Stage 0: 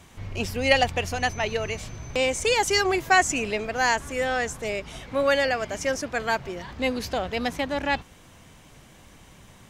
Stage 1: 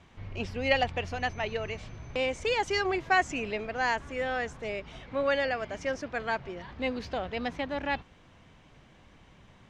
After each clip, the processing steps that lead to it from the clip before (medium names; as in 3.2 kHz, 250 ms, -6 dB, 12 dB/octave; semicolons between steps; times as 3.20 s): low-pass 3.8 kHz 12 dB/octave; trim -5.5 dB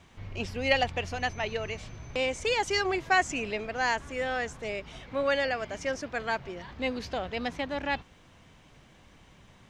treble shelf 6.2 kHz +10.5 dB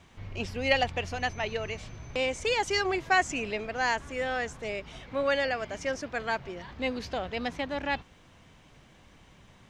no audible change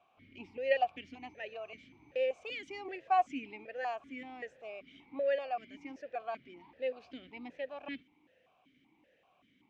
stepped vowel filter 5.2 Hz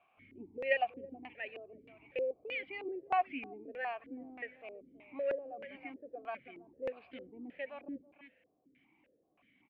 resampled via 11.025 kHz; delay 325 ms -15.5 dB; LFO low-pass square 1.6 Hz 390–2300 Hz; trim -3.5 dB